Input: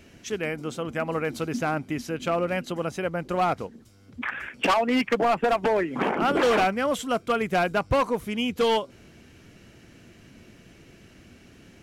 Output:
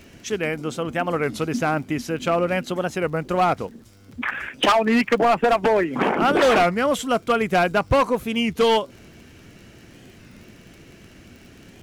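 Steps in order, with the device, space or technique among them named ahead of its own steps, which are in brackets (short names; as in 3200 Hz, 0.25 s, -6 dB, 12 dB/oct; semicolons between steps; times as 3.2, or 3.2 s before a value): warped LP (record warp 33 1/3 rpm, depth 160 cents; crackle 37/s -42 dBFS; pink noise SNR 43 dB); gain +4.5 dB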